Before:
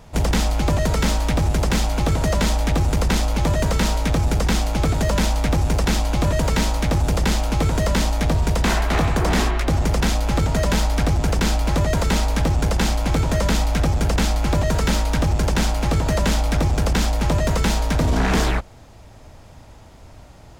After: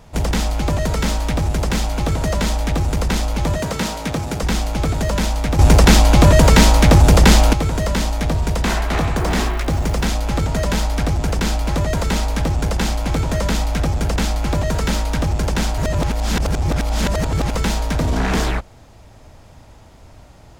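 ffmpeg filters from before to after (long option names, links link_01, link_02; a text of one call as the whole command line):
ffmpeg -i in.wav -filter_complex "[0:a]asettb=1/sr,asplit=3[link_01][link_02][link_03];[link_01]atrim=end=3.574[link_04];[link_02]atrim=start=3.57:end=4.43,asetpts=PTS-STARTPTS,afade=type=in:duration=0.004:curve=qsin,afade=type=out:start_time=0.856:duration=0.004:curve=qsin,highpass=110[link_05];[link_03]atrim=start=4.426[link_06];[link_04][link_05]acrossfade=duration=0.004:curve1=hsin:curve2=qsin[link_07];[link_07][link_06]acrossfade=duration=0.004:curve1=qsin:curve2=hsin,asettb=1/sr,asplit=3[link_08][link_09][link_10];[link_08]atrim=end=9.164[link_11];[link_09]atrim=start=9.16:end=10.06,asetpts=PTS-STARTPTS,afade=type=in:duration=0.004:curve=qsin,afade=type=out:start_time=0.896:duration=0.004:curve=qsin,acrusher=bits=8:dc=4:mix=0:aa=0.000001[link_12];[link_10]atrim=start=10.056[link_13];[link_11][link_12]acrossfade=duration=0.004:curve1=hsin:curve2=qsin[link_14];[link_14][link_13]acrossfade=duration=0.004:curve1=qsin:curve2=hsin,asplit=5[link_15][link_16][link_17][link_18][link_19];[link_15]atrim=end=5.592[link_20];[link_16]atrim=start=5.588:end=7.532,asetpts=PTS-STARTPTS,volume=9.5dB[link_21];[link_17]atrim=start=7.528:end=15.782[link_22];[link_18]atrim=start=15.778:end=17.552,asetpts=PTS-STARTPTS,areverse[link_23];[link_19]atrim=start=17.548[link_24];[link_20][link_21]acrossfade=duration=0.004:curve1=hsin:curve2=hsin[link_25];[link_25][link_22]acrossfade=duration=0.004:curve1=hsin:curve2=hsin[link_26];[link_26][link_23]acrossfade=duration=0.004:curve1=hsin:curve2=hsin[link_27];[link_27][link_24]acrossfade=duration=0.004:curve1=hsin:curve2=hsin" out.wav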